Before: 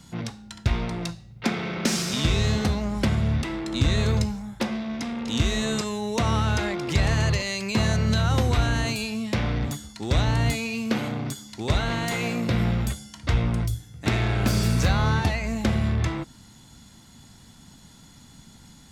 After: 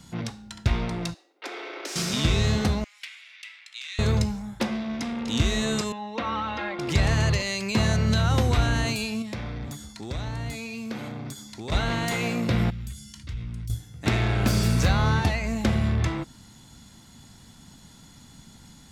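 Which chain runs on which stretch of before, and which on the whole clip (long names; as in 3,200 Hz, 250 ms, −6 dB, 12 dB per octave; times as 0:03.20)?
0:01.14–0:01.96: Butterworth high-pass 290 Hz 72 dB per octave + downward compressor 2.5 to 1, threshold −35 dBFS + one half of a high-frequency compander decoder only
0:02.84–0:03.99: four-pole ladder high-pass 2,000 Hz, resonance 50% + highs frequency-modulated by the lows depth 0.23 ms
0:05.92–0:06.79: high-pass filter 620 Hz 6 dB per octave + high-frequency loss of the air 320 metres + comb filter 3.7 ms, depth 72%
0:09.22–0:11.72: downward compressor 2 to 1, threshold −36 dBFS + notch filter 2,900 Hz, Q 16
0:12.70–0:13.70: guitar amp tone stack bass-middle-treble 6-0-2 + envelope flattener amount 50%
whole clip: no processing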